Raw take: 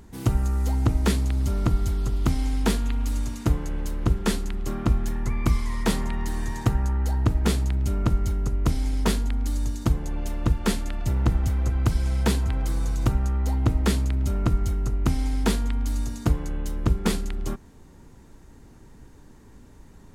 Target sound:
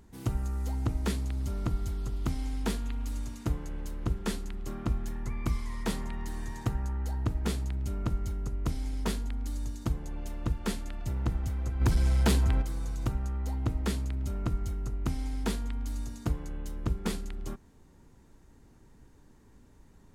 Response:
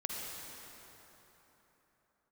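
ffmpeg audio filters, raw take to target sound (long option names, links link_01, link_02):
-filter_complex "[0:a]asplit=3[link_01][link_02][link_03];[link_01]afade=type=out:start_time=11.8:duration=0.02[link_04];[link_02]aeval=exprs='0.335*sin(PI/2*1.78*val(0)/0.335)':channel_layout=same,afade=type=in:start_time=11.8:duration=0.02,afade=type=out:start_time=12.61:duration=0.02[link_05];[link_03]afade=type=in:start_time=12.61:duration=0.02[link_06];[link_04][link_05][link_06]amix=inputs=3:normalize=0,volume=-8.5dB"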